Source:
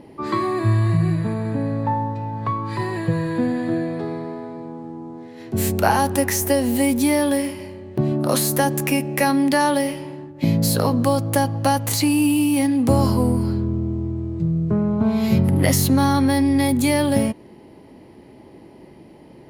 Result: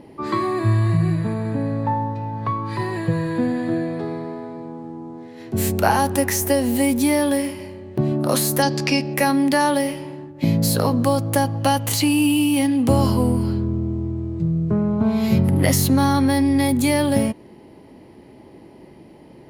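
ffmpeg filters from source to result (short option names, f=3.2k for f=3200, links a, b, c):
-filter_complex "[0:a]asettb=1/sr,asplit=3[a][b][c];[a]atrim=end=1.914[d];[b]atrim=start=1.91:end=2.92,asetpts=PTS-STARTPTS,afade=t=in:d=0.004:c=qsin,afade=t=out:st=1.006:d=0.004:c=qsin,bandreject=f=7.5k:w=12[e];[c]atrim=start=2.916[f];[d][e]acrossfade=d=0.004:c1=hsin:c2=qsin[g];[g][f]acrossfade=d=0.004:c1=qsin:c2=hsin,asettb=1/sr,asplit=3[h][i][j];[h]atrim=end=8.624[k];[i]atrim=start=8.62:end=9.14,asetpts=PTS-STARTPTS,afade=t=in:d=0.004:c=qsin,afade=t=out:st=0.516:d=0.004:c=qsin,lowpass=f=4.8k:t=q:w=6.9[l];[j]atrim=start=9.136[m];[k][l]acrossfade=d=0.004:c1=hsin:c2=qsin[n];[n][m]acrossfade=d=0.004:c1=qsin:c2=hsin,asettb=1/sr,asplit=3[o][p][q];[o]atrim=end=11.614[r];[p]atrim=start=11.61:end=13.59,asetpts=PTS-STARTPTS,afade=t=in:d=0.004:c=qsin,afade=t=out:st=1.976:d=0.004:c=qsin,equalizer=f=3k:t=o:w=0.3:g=7[s];[q]atrim=start=13.586[t];[r][s]acrossfade=d=0.004:c1=hsin:c2=qsin[u];[u][t]acrossfade=d=0.004:c1=qsin:c2=hsin"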